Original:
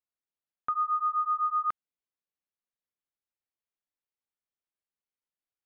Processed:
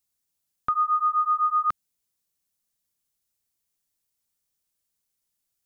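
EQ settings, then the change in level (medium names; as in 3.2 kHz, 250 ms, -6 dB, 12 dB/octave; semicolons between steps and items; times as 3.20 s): tone controls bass +9 dB, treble +13 dB; +5.0 dB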